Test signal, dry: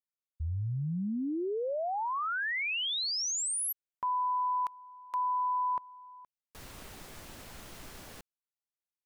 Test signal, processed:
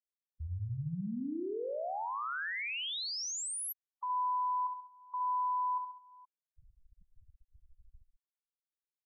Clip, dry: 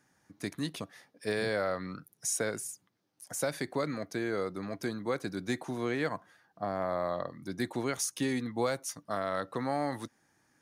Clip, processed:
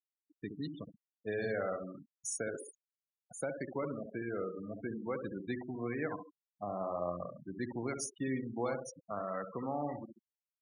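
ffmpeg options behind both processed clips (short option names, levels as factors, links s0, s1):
-filter_complex "[0:a]asplit=2[s0][s1];[s1]adelay=68,lowpass=f=2400:p=1,volume=0.501,asplit=2[s2][s3];[s3]adelay=68,lowpass=f=2400:p=1,volume=0.54,asplit=2[s4][s5];[s5]adelay=68,lowpass=f=2400:p=1,volume=0.54,asplit=2[s6][s7];[s7]adelay=68,lowpass=f=2400:p=1,volume=0.54,asplit=2[s8][s9];[s9]adelay=68,lowpass=f=2400:p=1,volume=0.54,asplit=2[s10][s11];[s11]adelay=68,lowpass=f=2400:p=1,volume=0.54,asplit=2[s12][s13];[s13]adelay=68,lowpass=f=2400:p=1,volume=0.54[s14];[s0][s2][s4][s6][s8][s10][s12][s14]amix=inputs=8:normalize=0,afftfilt=real='re*gte(hypot(re,im),0.0316)':imag='im*gte(hypot(re,im),0.0316)':win_size=1024:overlap=0.75,volume=0.531"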